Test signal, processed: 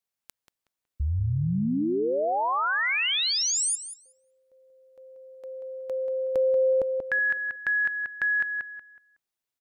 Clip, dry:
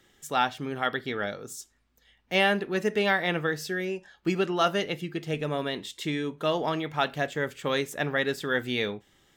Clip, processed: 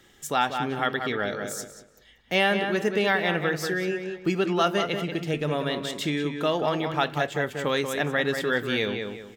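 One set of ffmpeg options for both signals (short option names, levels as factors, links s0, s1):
-filter_complex "[0:a]asplit=2[s0][s1];[s1]adelay=185,lowpass=f=3400:p=1,volume=0.447,asplit=2[s2][s3];[s3]adelay=185,lowpass=f=3400:p=1,volume=0.29,asplit=2[s4][s5];[s5]adelay=185,lowpass=f=3400:p=1,volume=0.29,asplit=2[s6][s7];[s7]adelay=185,lowpass=f=3400:p=1,volume=0.29[s8];[s0][s2][s4][s6][s8]amix=inputs=5:normalize=0,asplit=2[s9][s10];[s10]acompressor=threshold=0.0224:ratio=6,volume=1.26[s11];[s9][s11]amix=inputs=2:normalize=0,volume=0.841"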